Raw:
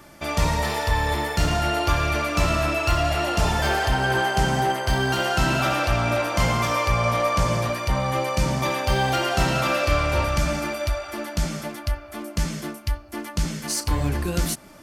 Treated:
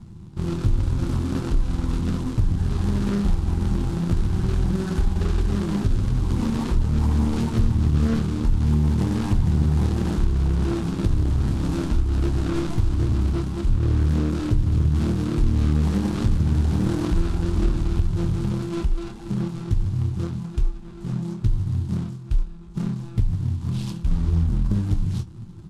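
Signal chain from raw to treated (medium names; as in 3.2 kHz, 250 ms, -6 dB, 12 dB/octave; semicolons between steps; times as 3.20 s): median filter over 41 samples; speed mistake 78 rpm record played at 45 rpm; bass shelf 190 Hz +6 dB; flange 1.3 Hz, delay 8.5 ms, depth 4.9 ms, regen -39%; ten-band graphic EQ 125 Hz +5 dB, 250 Hz +4 dB, 500 Hz -11 dB, 1 kHz +3 dB, 2 kHz -4 dB, 4 kHz +5 dB, 8 kHz +6 dB; compression 2.5:1, threshold -27 dBFS, peak gain reduction 10.5 dB; doubling 26 ms -12 dB; loudspeaker Doppler distortion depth 0.59 ms; trim +7.5 dB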